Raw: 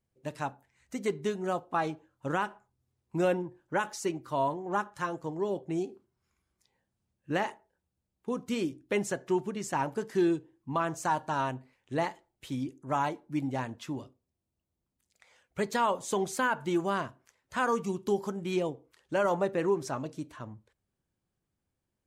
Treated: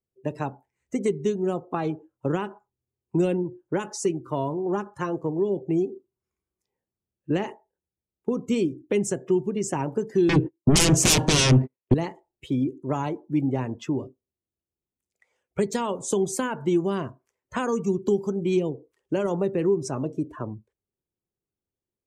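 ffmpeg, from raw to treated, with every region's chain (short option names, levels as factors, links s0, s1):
-filter_complex "[0:a]asettb=1/sr,asplit=3[s0][s1][s2];[s0]atrim=end=10.294[s3];[s1]atrim=start=10.29:end=11.94,asetpts=PTS-STARTPTS,afade=t=in:d=0.004:c=qsin,afade=t=out:st=1.646:d=0.004:c=qsin,agate=range=0.0112:threshold=0.00141:ratio=16:release=100:detection=peak,lowpass=f=2600:p=1,aeval=exprs='0.126*sin(PI/2*7.08*val(0)/0.126)':c=same[s4];[s2]atrim=start=11.936[s5];[s3][s4]acrossfade=d=0.004:c1=hsin:c2=qsin[s6];[s6][s5]acrossfade=d=0.004:c1=qsin:c2=hsin,afftdn=nr=19:nf=-49,equalizer=f=400:t=o:w=0.67:g=9,equalizer=f=1600:t=o:w=0.67:g=-4,equalizer=f=4000:t=o:w=0.67:g=-7,acrossover=split=240|3000[s7][s8][s9];[s8]acompressor=threshold=0.0158:ratio=6[s10];[s7][s10][s9]amix=inputs=3:normalize=0,volume=2.82"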